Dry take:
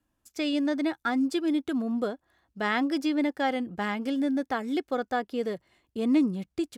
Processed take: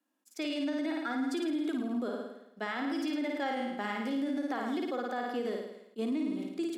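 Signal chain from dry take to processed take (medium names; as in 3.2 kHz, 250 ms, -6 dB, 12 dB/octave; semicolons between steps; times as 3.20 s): flutter echo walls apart 9.3 m, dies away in 0.83 s; peak limiter -22 dBFS, peak gain reduction 10.5 dB; steep high-pass 210 Hz 48 dB/octave; attacks held to a fixed rise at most 600 dB/s; trim -3.5 dB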